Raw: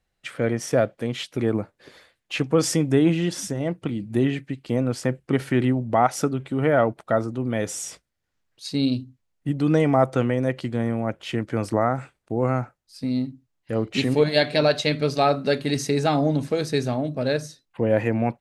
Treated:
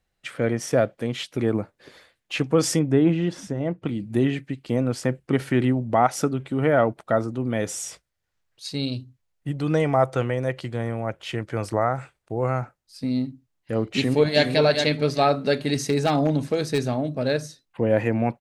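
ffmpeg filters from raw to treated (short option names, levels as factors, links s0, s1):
-filter_complex "[0:a]asettb=1/sr,asplit=3[s0][s1][s2];[s0]atrim=end=2.794[s3];[s1]atrim=start=2.79:end=3.85,asetpts=PTS-STARTPTS,afade=t=in:d=0.004:c=qsin,afade=t=out:st=1.056:d=0.004:c=qsin,lowpass=f=1800:p=1[s4];[s2]atrim=start=3.846[s5];[s3][s4]acrossfade=d=0.004:c1=hsin:c2=qsin[s6];[s6][s5]acrossfade=d=0.004:c1=qsin:c2=hsin,asettb=1/sr,asplit=3[s7][s8][s9];[s7]atrim=end=7.754[s10];[s8]atrim=start=7.75:end=12.62,asetpts=PTS-STARTPTS,afade=t=in:d=0.004:c=qsin,afade=t=out:st=4.866:d=0.004:c=qsin,equalizer=f=250:t=o:w=0.77:g=-8[s11];[s9]atrim=start=12.616[s12];[s10][s11]acrossfade=d=0.004:c1=hsin:c2=qsin[s13];[s13][s12]acrossfade=d=0.004:c1=qsin:c2=hsin,asplit=2[s14][s15];[s15]afade=t=in:st=13.83:d=0.01,afade=t=out:st=14.46:d=0.01,aecho=0:1:410|820|1230:0.530884|0.106177|0.0212354[s16];[s14][s16]amix=inputs=2:normalize=0,asplit=3[s17][s18][s19];[s17]afade=t=out:st=15.86:d=0.02[s20];[s18]aeval=exprs='0.224*(abs(mod(val(0)/0.224+3,4)-2)-1)':c=same,afade=t=in:st=15.86:d=0.02,afade=t=out:st=17.29:d=0.02[s21];[s19]afade=t=in:st=17.29:d=0.02[s22];[s20][s21][s22]amix=inputs=3:normalize=0"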